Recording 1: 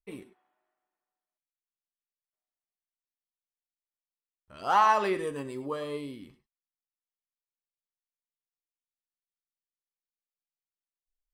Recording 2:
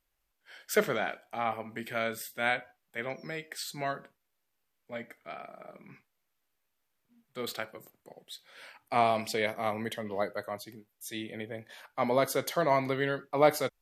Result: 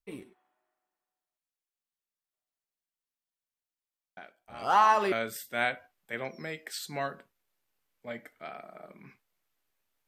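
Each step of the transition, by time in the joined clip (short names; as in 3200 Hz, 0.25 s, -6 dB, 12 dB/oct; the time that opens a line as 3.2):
recording 1
4.17 add recording 2 from 1.02 s 0.95 s -13.5 dB
5.12 switch to recording 2 from 1.97 s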